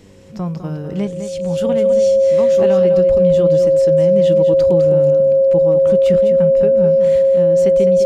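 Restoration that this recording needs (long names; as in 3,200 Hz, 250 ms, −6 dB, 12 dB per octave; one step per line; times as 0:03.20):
hum removal 97.3 Hz, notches 5
notch filter 540 Hz, Q 30
echo removal 206 ms −9 dB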